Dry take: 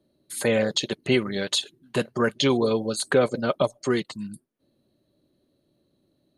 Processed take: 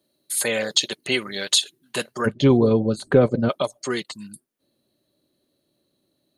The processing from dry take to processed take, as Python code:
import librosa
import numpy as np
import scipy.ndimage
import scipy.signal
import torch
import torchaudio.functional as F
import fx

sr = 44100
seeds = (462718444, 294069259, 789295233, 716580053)

y = fx.tilt_eq(x, sr, slope=fx.steps((0.0, 3.0), (2.25, -3.5), (3.48, 2.0)))